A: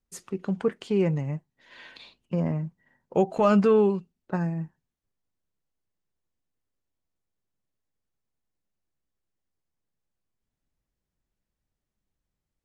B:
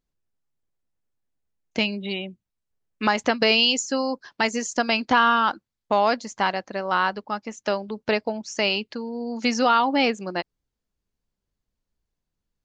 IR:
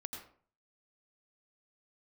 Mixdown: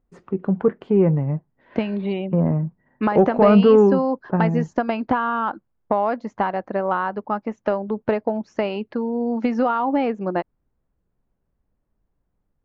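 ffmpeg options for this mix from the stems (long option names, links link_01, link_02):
-filter_complex "[0:a]volume=2dB[link_01];[1:a]acompressor=threshold=-23dB:ratio=6,volume=2dB[link_02];[link_01][link_02]amix=inputs=2:normalize=0,lowpass=1200,acontrast=35"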